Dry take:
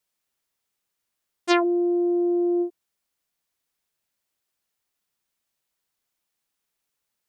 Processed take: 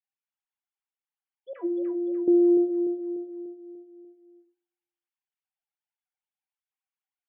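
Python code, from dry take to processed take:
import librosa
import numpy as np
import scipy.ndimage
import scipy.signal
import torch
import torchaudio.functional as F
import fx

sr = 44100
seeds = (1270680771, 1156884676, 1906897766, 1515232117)

p1 = fx.sine_speech(x, sr)
p2 = fx.comb_fb(p1, sr, f0_hz=330.0, decay_s=0.18, harmonics='all', damping=0.0, mix_pct=90, at=(1.53, 2.28))
p3 = p2 + fx.echo_feedback(p2, sr, ms=295, feedback_pct=51, wet_db=-6.5, dry=0)
p4 = fx.room_shoebox(p3, sr, seeds[0], volume_m3=780.0, walls='furnished', distance_m=0.55)
y = p4 * librosa.db_to_amplitude(3.5)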